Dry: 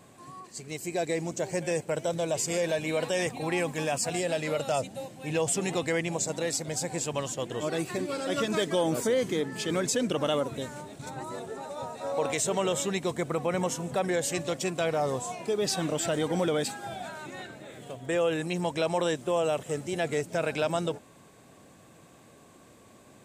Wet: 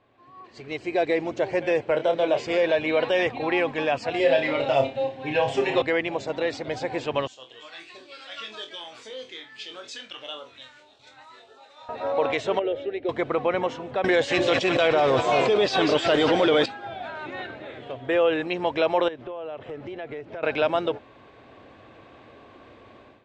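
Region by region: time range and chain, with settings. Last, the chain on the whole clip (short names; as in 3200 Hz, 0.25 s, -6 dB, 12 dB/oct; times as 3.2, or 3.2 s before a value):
1.91–2.47 HPF 140 Hz 24 dB/oct + high shelf 10000 Hz -6.5 dB + doubler 28 ms -7.5 dB
4.19–5.82 notch 1300 Hz, Q 10 + comb 7.5 ms, depth 84% + flutter echo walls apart 5.1 m, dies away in 0.3 s
7.27–11.89 pre-emphasis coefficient 0.97 + LFO notch sine 1.7 Hz 370–2200 Hz + flutter echo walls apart 4 m, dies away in 0.23 s
12.59–13.09 tape spacing loss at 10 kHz 35 dB + fixed phaser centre 430 Hz, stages 4
14.04–16.66 high shelf 3700 Hz +11.5 dB + split-band echo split 820 Hz, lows 0.302 s, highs 0.19 s, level -10.5 dB + fast leveller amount 100%
19.08–20.43 LPF 2400 Hz 6 dB/oct + compressor 12:1, threshold -37 dBFS
whole clip: LPF 3600 Hz 24 dB/oct; bell 170 Hz -14.5 dB 0.61 oct; AGC gain up to 15.5 dB; gain -7.5 dB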